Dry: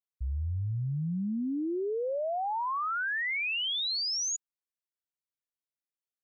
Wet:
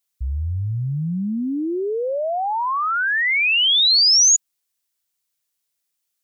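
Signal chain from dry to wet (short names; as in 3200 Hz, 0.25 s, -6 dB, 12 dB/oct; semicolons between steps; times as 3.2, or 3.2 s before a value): high shelf 2700 Hz +12 dB; gain +8 dB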